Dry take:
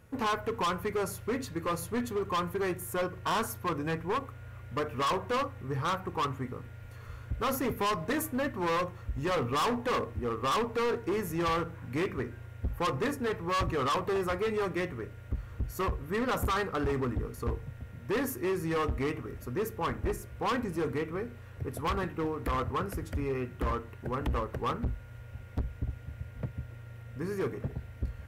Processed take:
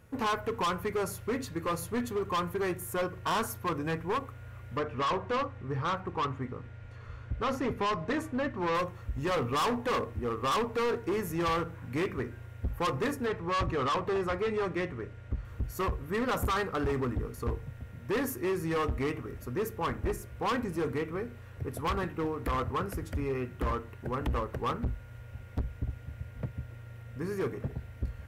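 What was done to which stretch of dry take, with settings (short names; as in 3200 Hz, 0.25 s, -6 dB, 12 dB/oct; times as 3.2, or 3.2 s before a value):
4.77–8.75 air absorption 92 m
13.26–15.45 air absorption 56 m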